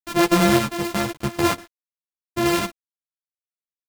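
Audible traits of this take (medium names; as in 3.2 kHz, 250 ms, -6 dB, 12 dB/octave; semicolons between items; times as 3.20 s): a buzz of ramps at a fixed pitch in blocks of 128 samples; random-step tremolo; a quantiser's noise floor 8-bit, dither none; a shimmering, thickened sound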